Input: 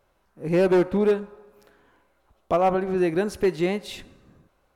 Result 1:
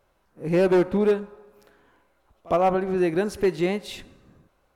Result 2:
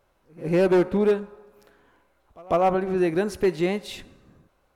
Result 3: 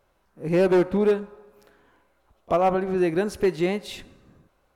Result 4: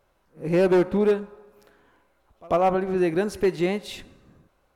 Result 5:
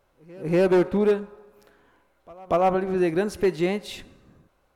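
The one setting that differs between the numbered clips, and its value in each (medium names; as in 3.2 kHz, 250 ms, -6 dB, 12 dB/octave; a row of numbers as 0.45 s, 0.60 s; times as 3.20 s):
pre-echo, time: 59 ms, 148 ms, 31 ms, 94 ms, 239 ms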